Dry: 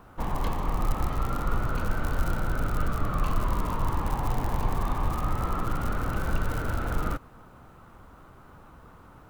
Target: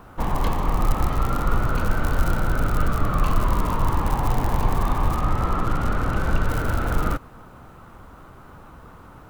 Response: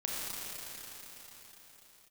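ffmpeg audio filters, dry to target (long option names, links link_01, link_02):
-filter_complex "[0:a]asettb=1/sr,asplit=3[link_01][link_02][link_03];[link_01]atrim=end=5.164[link_04];[link_02]atrim=start=5.16:end=6.49,asetpts=PTS-STARTPTS,afade=type=in:duration=0.004:curve=qsin,afade=type=out:start_time=1.326:duration=0.004:curve=qsin,highshelf=frequency=9900:gain=-10.5[link_05];[link_03]atrim=start=6.486[link_06];[link_04][link_05]acrossfade=duration=0.004:curve1=hsin:curve2=qsin[link_07];[link_07][link_06]acrossfade=duration=0.004:curve1=qsin:curve2=hsin,volume=6dB"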